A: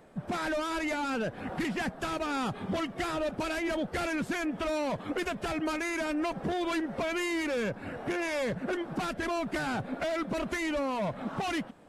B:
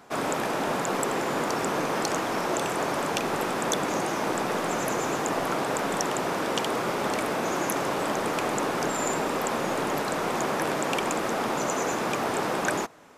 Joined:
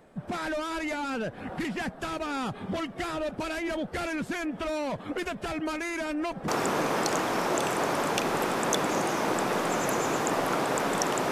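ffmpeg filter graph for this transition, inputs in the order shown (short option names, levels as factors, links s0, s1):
-filter_complex "[0:a]apad=whole_dur=11.31,atrim=end=11.31,atrim=end=6.482[s0];[1:a]atrim=start=1.468:end=6.3[s1];[s0][s1]acrossfade=d=0.004:c1=hsin:c2=hsin"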